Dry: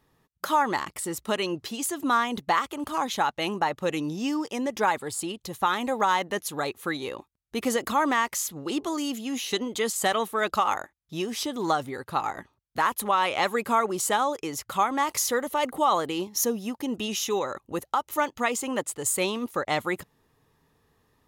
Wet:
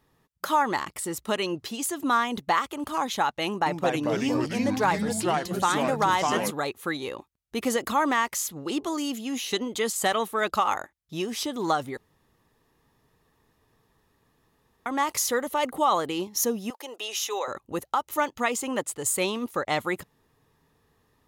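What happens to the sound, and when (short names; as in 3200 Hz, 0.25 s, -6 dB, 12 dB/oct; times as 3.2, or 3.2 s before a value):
3.47–6.51 echoes that change speed 0.191 s, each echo -3 st, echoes 3
11.97–14.86 room tone
16.7–17.48 HPF 470 Hz 24 dB/oct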